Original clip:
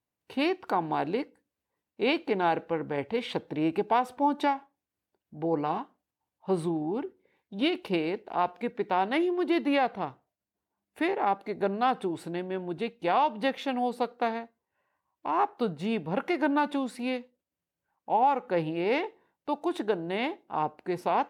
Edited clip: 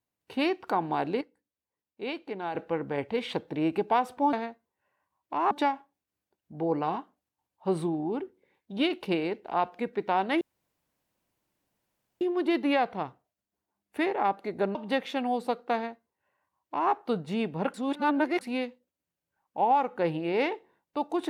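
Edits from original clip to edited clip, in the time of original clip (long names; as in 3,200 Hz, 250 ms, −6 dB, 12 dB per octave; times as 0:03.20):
0:01.21–0:02.55: clip gain −8.5 dB
0:09.23: splice in room tone 1.80 s
0:11.77–0:13.27: remove
0:14.26–0:15.44: duplicate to 0:04.33
0:16.26–0:16.93: reverse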